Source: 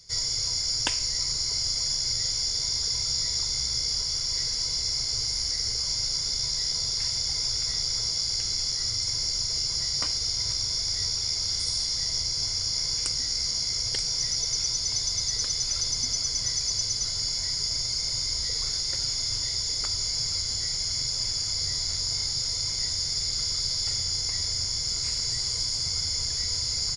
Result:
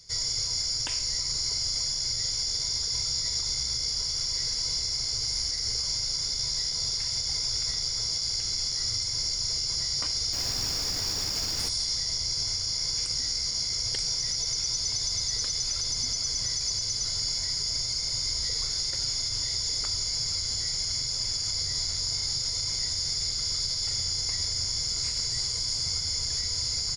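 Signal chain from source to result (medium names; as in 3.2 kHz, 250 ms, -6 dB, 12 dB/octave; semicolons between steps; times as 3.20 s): 10.32–11.68 s: added noise pink -38 dBFS; peak limiter -19.5 dBFS, peak gain reduction 10 dB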